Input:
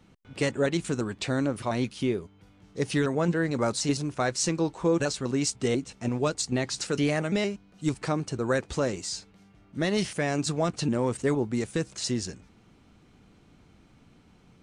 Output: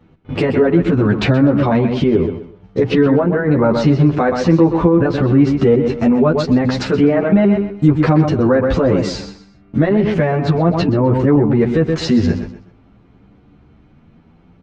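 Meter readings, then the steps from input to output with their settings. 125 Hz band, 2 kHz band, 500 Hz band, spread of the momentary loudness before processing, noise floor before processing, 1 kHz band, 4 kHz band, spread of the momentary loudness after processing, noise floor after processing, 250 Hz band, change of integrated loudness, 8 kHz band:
+15.5 dB, +8.5 dB, +13.5 dB, 6 LU, -58 dBFS, +12.0 dB, +4.5 dB, 6 LU, -49 dBFS, +15.5 dB, +14.0 dB, no reading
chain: low-pass that closes with the level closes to 1.7 kHz, closed at -21.5 dBFS; gate -50 dBFS, range -15 dB; in parallel at +1 dB: compression, threshold -33 dBFS, peak gain reduction 13 dB; on the sum: tape spacing loss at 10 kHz 32 dB; on a send: feedback delay 126 ms, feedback 28%, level -11 dB; on the sum: loudness maximiser +22 dB; endless flanger 10.1 ms +0.5 Hz; trim -1 dB

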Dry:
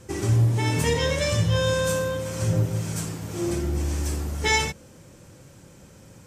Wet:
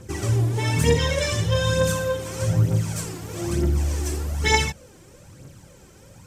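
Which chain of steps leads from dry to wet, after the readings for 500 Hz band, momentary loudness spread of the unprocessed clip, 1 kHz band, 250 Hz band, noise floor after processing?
+1.5 dB, 8 LU, +1.5 dB, +1.0 dB, -49 dBFS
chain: phaser 1.1 Hz, delay 3 ms, feedback 52%

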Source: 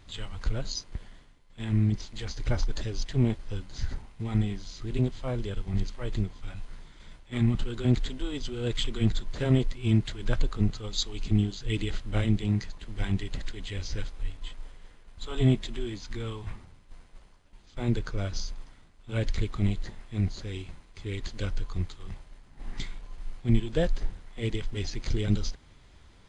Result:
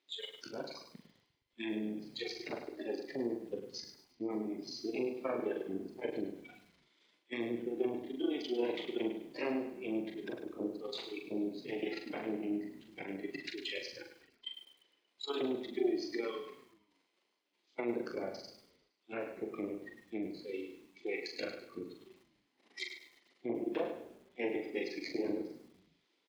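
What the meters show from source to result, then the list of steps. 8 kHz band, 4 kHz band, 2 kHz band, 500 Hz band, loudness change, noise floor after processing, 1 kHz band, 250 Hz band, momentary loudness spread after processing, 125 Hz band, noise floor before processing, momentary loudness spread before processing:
no reading, -7.5 dB, -3.5 dB, -1.0 dB, -8.5 dB, -79 dBFS, -3.0 dB, -7.0 dB, 12 LU, -30.0 dB, -55 dBFS, 15 LU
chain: Chebyshev shaper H 3 -33 dB, 6 -11 dB, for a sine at -10 dBFS; spectral noise reduction 19 dB; high-order bell 3.4 kHz +8 dB; in parallel at -2 dB: compression, threshold -34 dBFS, peak gain reduction 17.5 dB; on the sum: peak limiter -19 dBFS, peak gain reduction 13.5 dB; level rider gain up to 4 dB; low-pass that closes with the level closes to 510 Hz, closed at -19 dBFS; ladder high-pass 280 Hz, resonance 45%; doubling 42 ms -5.5 dB; on a send: frequency-shifting echo 116 ms, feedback 58%, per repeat -30 Hz, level -19 dB; on the sum: bit-crushed delay 102 ms, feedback 35%, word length 10-bit, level -8.5 dB; trim -2 dB

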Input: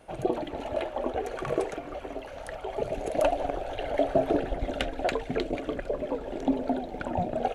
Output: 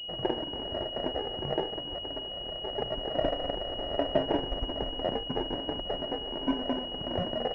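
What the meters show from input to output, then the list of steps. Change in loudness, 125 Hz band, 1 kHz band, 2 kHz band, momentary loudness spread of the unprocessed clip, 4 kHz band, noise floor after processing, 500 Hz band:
-1.5 dB, -1.0 dB, -4.0 dB, -6.0 dB, 9 LU, +13.0 dB, -39 dBFS, -3.5 dB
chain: sample-and-hold 35×; class-D stage that switches slowly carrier 2.9 kHz; trim -2.5 dB

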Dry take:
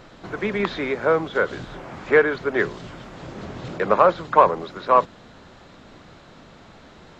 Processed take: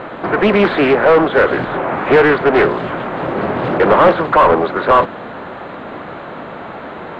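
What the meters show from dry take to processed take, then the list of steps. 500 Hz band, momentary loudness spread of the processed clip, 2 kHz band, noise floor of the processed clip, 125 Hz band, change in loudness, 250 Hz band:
+9.0 dB, 19 LU, +8.5 dB, -30 dBFS, +10.5 dB, +7.5 dB, +12.5 dB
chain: overdrive pedal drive 30 dB, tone 1.1 kHz, clips at -1 dBFS; boxcar filter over 8 samples; loudspeaker Doppler distortion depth 0.4 ms; trim +1.5 dB

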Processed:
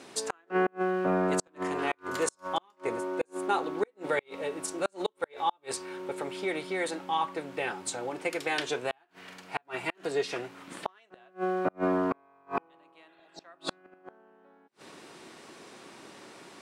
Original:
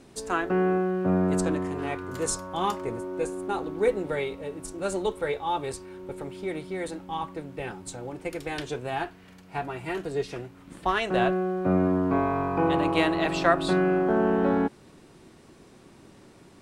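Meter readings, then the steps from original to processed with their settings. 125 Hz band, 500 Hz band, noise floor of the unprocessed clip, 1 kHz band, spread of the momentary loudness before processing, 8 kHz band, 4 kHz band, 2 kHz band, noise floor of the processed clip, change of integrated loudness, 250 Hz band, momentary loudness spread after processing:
-12.0 dB, -5.0 dB, -53 dBFS, -4.0 dB, 13 LU, -1.0 dB, -1.5 dB, -3.0 dB, -66 dBFS, -5.0 dB, -8.5 dB, 20 LU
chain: frequency weighting A; inverted gate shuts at -20 dBFS, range -39 dB; in parallel at -1.5 dB: compression, threshold -40 dBFS, peak gain reduction 13.5 dB; on the sum: spectral replace 13.11–13.38 s, 960–3700 Hz after; trim +2 dB

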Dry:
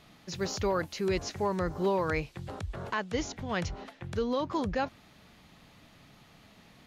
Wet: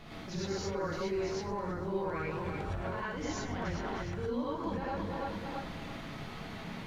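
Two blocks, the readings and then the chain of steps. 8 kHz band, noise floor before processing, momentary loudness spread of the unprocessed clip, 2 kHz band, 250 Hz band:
-5.0 dB, -58 dBFS, 10 LU, -3.5 dB, -2.5 dB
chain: backward echo that repeats 166 ms, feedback 54%, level -11.5 dB; low-pass 2.7 kHz 6 dB/octave; reverse; compression, threshold -41 dBFS, peak gain reduction 16 dB; reverse; peak limiter -38.5 dBFS, peak gain reduction 8 dB; in parallel at -0.5 dB: gain riding within 5 dB; on the sum: added noise brown -56 dBFS; gated-style reverb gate 140 ms rising, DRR -7.5 dB; trim -2 dB

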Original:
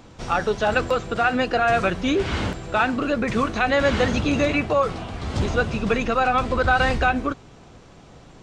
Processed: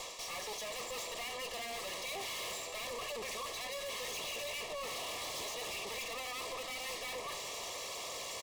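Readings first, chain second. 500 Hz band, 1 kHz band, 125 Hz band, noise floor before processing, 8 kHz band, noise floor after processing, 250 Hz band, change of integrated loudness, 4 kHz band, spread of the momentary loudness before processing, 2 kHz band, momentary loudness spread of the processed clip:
-20.5 dB, -21.0 dB, -32.5 dB, -47 dBFS, +1.0 dB, -44 dBFS, -32.0 dB, -17.5 dB, -7.0 dB, 7 LU, -19.0 dB, 2 LU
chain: comb filter that takes the minimum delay 1.8 ms; high-pass 550 Hz 12 dB/octave; treble shelf 3 kHz +11.5 dB; reverse; compression 6:1, threshold -38 dBFS, peak gain reduction 20.5 dB; reverse; valve stage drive 53 dB, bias 0.45; Butterworth band-stop 1.5 kHz, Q 2.8; delay 518 ms -15 dB; trim +13.5 dB

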